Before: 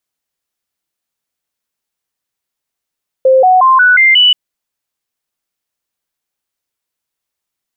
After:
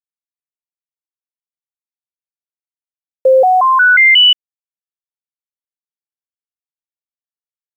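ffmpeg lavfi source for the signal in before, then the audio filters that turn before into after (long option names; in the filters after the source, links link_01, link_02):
-f lavfi -i "aevalsrc='0.631*clip(min(mod(t,0.18),0.18-mod(t,0.18))/0.005,0,1)*sin(2*PI*524*pow(2,floor(t/0.18)/2)*mod(t,0.18))':duration=1.08:sample_rate=44100"
-filter_complex "[0:a]acrossover=split=760|1100[link_01][link_02][link_03];[link_02]acompressor=threshold=-23dB:ratio=12[link_04];[link_01][link_04][link_03]amix=inputs=3:normalize=0,acrusher=bits=7:mix=0:aa=0.000001"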